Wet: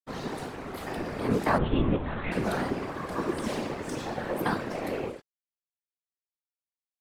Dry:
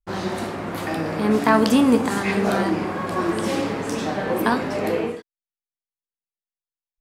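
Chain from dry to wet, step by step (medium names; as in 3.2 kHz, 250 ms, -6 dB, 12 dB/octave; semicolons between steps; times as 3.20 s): crossover distortion -42.5 dBFS; 1.58–2.32 s: LPC vocoder at 8 kHz pitch kept; whisper effect; trim -7.5 dB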